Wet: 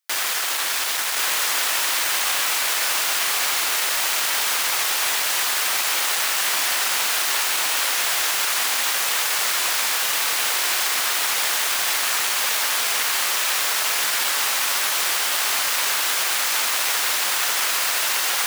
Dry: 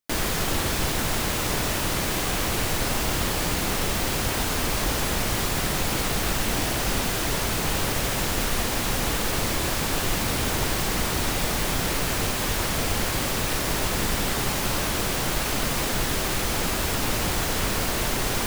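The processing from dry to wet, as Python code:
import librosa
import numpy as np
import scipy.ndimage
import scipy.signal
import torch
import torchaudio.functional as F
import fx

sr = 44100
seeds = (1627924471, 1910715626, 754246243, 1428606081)

p1 = np.minimum(x, 2.0 * 10.0 ** (-21.5 / 20.0) - x)
p2 = scipy.signal.sosfilt(scipy.signal.butter(2, 1100.0, 'highpass', fs=sr, output='sos'), p1)
p3 = p2 + fx.echo_single(p2, sr, ms=1070, db=-3.0, dry=0)
y = p3 * librosa.db_to_amplitude(6.0)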